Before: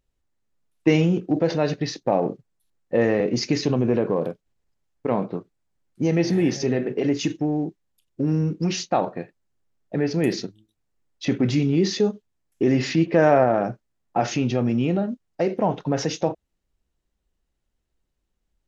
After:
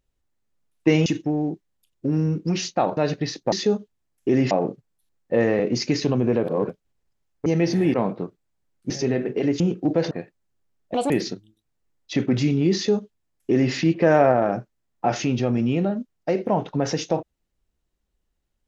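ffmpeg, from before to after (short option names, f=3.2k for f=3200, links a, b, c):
-filter_complex "[0:a]asplit=14[a][b][c][d][e][f][g][h][i][j][k][l][m][n];[a]atrim=end=1.062[o];[b]atrim=start=7.208:end=9.122[p];[c]atrim=start=1.568:end=2.122[q];[d]atrim=start=11.858:end=12.852[r];[e]atrim=start=2.118:end=4.052[s];[f]atrim=start=4.048:end=4.302,asetpts=PTS-STARTPTS,areverse[t];[g]atrim=start=4.298:end=5.072[u];[h]atrim=start=6.028:end=6.512[v];[i]atrim=start=5.068:end=6.032[w];[j]atrim=start=6.508:end=7.212[x];[k]atrim=start=1.058:end=1.572[y];[l]atrim=start=9.118:end=9.954[z];[m]atrim=start=9.95:end=10.22,asetpts=PTS-STARTPTS,asetrate=74088,aresample=44100[aa];[n]atrim=start=10.216[ab];[o][p]acrossfade=d=0.004:c1=hsin:c2=hsin[ac];[ac][q]acrossfade=d=0.004:c1=hsin:c2=hsin[ad];[ad][r]acrossfade=d=0.004:c1=hsin:c2=hsin[ae];[ae][s]acrossfade=d=0.004:c1=hsin:c2=hsin[af];[af][t]acrossfade=d=0.004:c1=hsin:c2=hsin[ag];[ag][u]acrossfade=d=0.004:c1=hsin:c2=hsin[ah];[ah][v]acrossfade=d=0.004:c1=hsin:c2=hsin[ai];[ai][w]acrossfade=d=0.004:c1=hsin:c2=hsin[aj];[aj][x]acrossfade=d=0.004:c1=hsin:c2=hsin[ak];[ak][y]acrossfade=d=0.004:c1=hsin:c2=hsin[al];[al][z]acrossfade=d=0.004:c1=hsin:c2=hsin[am];[am][aa]acrossfade=d=0.004:c1=hsin:c2=hsin[an];[an][ab]acrossfade=d=0.004:c1=hsin:c2=hsin"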